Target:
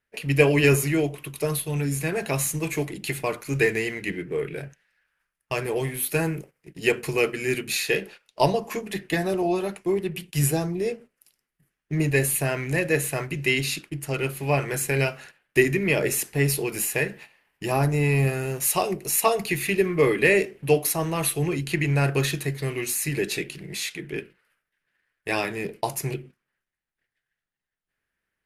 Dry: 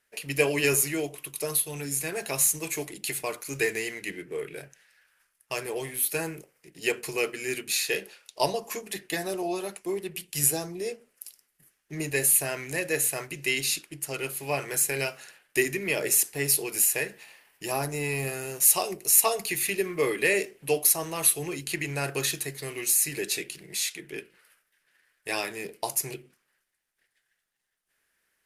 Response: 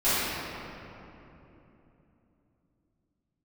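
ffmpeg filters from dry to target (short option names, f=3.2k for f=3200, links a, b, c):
-filter_complex "[0:a]bass=f=250:g=9,treble=f=4k:g=-10,agate=range=-11dB:threshold=-48dB:ratio=16:detection=peak,asettb=1/sr,asplit=3[a][b][c];[a]atrim=end=5.654[d];[b]atrim=start=5.65:end=7.91,asetpts=PTS-STARTPTS,afade=t=in:d=0.004:c=qsin,afade=t=out:st=2.256:d=0.004:c=qsin,equalizer=f=12k:w=0.46:g=3.5[e];[c]atrim=start=7.906[f];[d][e]acrossfade=d=0.004:c1=hsin:c2=qsin[g];[g][f]acrossfade=d=0.004:c1=qsin:c2=hsin,volume=5dB"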